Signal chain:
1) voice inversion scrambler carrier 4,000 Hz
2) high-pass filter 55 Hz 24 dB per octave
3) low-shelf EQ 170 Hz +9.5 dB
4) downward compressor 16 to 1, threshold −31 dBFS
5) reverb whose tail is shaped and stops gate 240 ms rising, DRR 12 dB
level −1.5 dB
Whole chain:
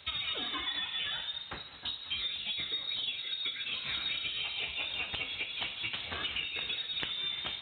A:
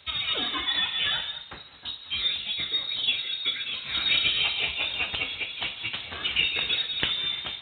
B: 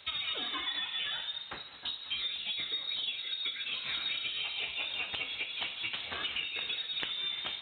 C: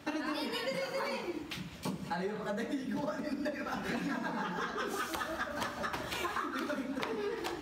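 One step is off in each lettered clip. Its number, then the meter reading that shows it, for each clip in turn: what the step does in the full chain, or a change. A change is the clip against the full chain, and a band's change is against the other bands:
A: 4, average gain reduction 6.0 dB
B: 3, 125 Hz band −6.5 dB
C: 1, 4 kHz band −22.5 dB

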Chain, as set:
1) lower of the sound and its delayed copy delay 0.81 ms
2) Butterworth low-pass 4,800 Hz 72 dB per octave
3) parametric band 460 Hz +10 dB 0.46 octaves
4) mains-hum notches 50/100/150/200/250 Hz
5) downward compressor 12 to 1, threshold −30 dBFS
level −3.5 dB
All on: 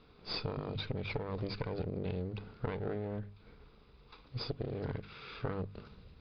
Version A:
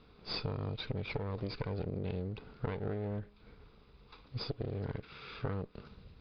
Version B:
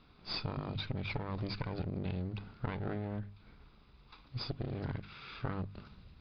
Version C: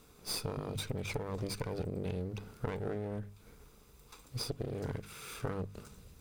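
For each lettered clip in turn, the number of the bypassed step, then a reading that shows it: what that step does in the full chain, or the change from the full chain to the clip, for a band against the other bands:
4, 125 Hz band +2.0 dB
3, 500 Hz band −5.5 dB
2, change in momentary loudness spread +2 LU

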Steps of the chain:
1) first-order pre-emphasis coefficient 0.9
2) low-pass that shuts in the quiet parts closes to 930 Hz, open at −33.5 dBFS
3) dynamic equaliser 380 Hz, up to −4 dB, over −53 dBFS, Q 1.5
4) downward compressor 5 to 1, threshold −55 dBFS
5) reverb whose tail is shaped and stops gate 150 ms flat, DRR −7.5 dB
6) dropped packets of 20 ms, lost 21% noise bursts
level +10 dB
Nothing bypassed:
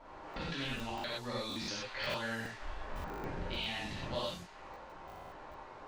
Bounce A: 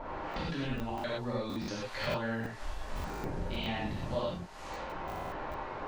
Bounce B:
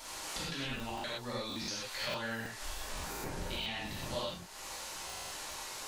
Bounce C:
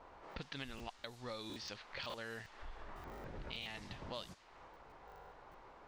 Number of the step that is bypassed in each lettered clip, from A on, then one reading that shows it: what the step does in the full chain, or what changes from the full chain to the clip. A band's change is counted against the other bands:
1, 4 kHz band −8.0 dB
2, 8 kHz band +11.0 dB
5, change in crest factor +3.5 dB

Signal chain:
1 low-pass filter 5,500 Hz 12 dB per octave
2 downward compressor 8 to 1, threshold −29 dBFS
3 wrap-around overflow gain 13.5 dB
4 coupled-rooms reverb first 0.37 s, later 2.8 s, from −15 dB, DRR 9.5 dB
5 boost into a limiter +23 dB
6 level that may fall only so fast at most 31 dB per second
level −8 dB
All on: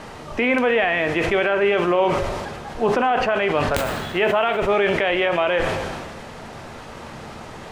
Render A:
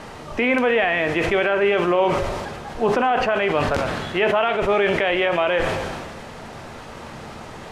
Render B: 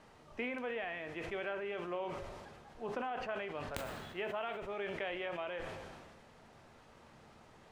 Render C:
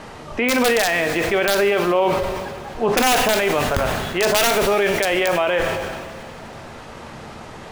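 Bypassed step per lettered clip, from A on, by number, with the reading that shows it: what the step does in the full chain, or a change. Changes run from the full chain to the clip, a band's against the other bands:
3, distortion level −17 dB
5, change in crest factor +5.0 dB
2, average gain reduction 3.5 dB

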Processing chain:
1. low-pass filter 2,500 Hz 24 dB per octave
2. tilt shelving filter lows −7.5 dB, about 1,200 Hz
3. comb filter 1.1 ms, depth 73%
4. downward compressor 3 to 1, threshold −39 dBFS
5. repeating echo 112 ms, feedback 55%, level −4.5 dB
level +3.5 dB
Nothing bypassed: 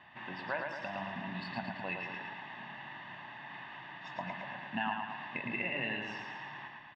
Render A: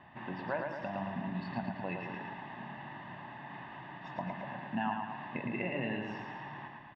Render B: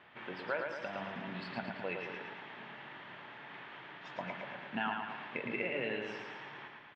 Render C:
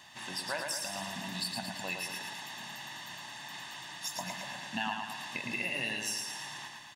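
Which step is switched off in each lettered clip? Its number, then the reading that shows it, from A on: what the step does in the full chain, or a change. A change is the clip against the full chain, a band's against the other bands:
2, 4 kHz band −9.5 dB
3, 500 Hz band +6.0 dB
1, 4 kHz band +10.5 dB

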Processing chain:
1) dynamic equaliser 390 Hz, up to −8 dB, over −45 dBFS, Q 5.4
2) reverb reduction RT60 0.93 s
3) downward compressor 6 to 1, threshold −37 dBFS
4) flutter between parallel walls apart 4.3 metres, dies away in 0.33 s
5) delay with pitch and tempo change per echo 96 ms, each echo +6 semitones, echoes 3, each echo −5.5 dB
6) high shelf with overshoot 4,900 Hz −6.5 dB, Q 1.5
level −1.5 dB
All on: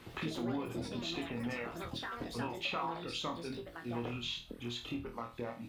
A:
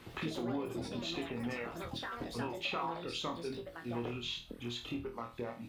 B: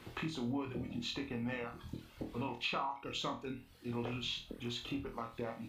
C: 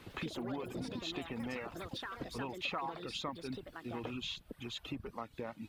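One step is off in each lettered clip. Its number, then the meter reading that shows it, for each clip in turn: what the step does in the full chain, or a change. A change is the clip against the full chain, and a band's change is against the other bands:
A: 1, 500 Hz band +1.5 dB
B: 5, change in momentary loudness spread +2 LU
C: 4, change in integrated loudness −2.0 LU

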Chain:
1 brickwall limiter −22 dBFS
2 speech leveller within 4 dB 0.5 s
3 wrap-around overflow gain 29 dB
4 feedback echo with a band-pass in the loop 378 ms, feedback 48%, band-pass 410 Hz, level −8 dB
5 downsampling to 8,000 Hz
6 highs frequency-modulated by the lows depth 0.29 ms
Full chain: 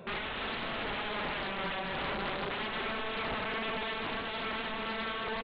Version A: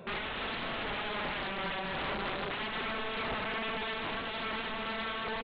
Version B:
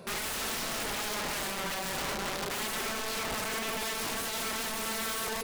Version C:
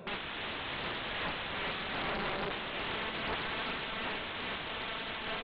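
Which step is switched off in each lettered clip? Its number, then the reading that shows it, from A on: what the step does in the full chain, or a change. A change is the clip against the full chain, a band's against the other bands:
4, change in crest factor −1.5 dB
5, 4 kHz band +3.0 dB
1, average gain reduction 4.5 dB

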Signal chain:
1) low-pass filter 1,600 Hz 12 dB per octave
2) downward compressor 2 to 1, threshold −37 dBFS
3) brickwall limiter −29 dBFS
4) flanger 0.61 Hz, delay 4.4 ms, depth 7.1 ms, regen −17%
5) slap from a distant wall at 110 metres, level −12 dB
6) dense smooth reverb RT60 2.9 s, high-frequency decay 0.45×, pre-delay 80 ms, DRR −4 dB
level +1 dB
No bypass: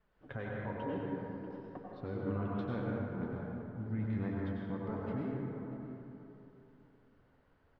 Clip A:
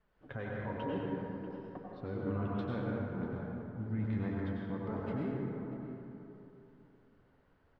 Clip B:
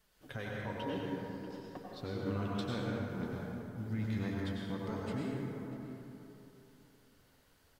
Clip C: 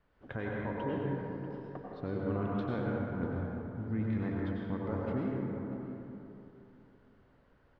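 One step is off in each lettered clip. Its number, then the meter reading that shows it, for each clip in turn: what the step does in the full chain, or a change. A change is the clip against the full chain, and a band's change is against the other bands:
2, average gain reduction 5.0 dB
1, 2 kHz band +3.0 dB
4, change in integrated loudness +3.0 LU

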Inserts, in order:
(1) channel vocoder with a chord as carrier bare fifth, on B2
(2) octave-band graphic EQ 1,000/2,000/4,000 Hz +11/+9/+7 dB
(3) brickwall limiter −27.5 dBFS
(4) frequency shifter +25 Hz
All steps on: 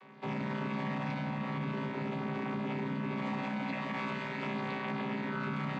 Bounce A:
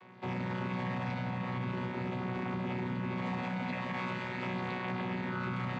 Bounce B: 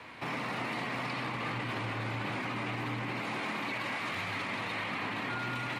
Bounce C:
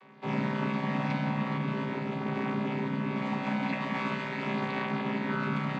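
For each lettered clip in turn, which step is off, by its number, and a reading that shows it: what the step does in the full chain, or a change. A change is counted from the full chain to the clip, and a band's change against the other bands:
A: 4, 125 Hz band +2.5 dB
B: 1, 4 kHz band +9.0 dB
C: 3, average gain reduction 4.0 dB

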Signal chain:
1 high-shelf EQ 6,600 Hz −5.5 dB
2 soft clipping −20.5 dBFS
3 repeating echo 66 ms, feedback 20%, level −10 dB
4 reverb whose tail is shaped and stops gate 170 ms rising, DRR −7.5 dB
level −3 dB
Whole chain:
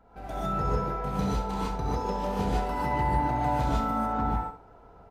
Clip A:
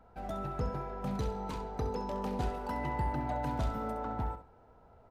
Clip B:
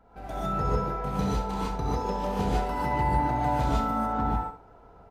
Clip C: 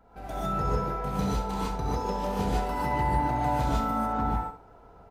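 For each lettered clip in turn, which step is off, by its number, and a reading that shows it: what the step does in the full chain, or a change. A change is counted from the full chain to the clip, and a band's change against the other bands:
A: 4, change in crest factor −3.0 dB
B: 2, distortion level −22 dB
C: 1, 8 kHz band +3.0 dB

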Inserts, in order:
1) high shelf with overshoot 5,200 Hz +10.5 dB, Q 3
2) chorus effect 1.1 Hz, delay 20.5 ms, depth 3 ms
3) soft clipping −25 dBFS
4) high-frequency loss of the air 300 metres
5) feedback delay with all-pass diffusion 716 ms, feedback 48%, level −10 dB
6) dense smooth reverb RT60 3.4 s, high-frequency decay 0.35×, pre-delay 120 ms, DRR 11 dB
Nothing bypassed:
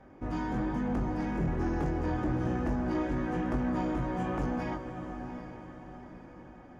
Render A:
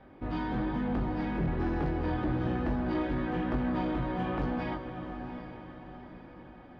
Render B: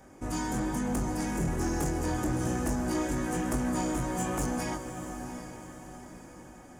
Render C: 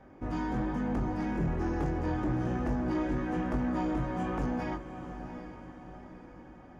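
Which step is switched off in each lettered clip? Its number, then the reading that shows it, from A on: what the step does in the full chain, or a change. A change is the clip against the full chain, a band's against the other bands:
1, 4 kHz band +4.0 dB
4, 4 kHz band +8.0 dB
6, echo-to-direct ratio −6.5 dB to −9.0 dB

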